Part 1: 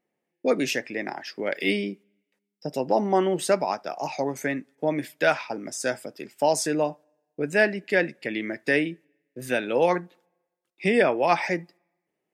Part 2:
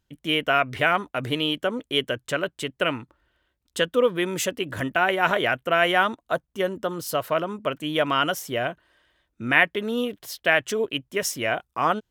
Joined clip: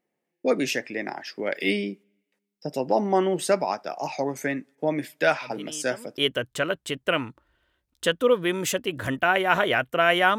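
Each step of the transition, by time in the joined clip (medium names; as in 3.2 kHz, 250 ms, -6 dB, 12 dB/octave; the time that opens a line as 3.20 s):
part 1
5.36 s: add part 2 from 1.09 s 0.81 s -16 dB
6.17 s: go over to part 2 from 1.90 s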